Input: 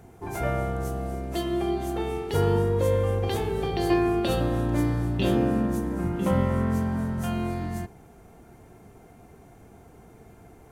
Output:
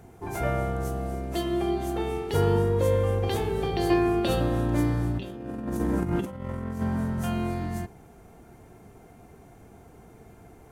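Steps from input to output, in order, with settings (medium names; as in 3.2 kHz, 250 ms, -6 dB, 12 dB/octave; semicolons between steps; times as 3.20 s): 5.12–6.82 s: compressor with a negative ratio -29 dBFS, ratio -0.5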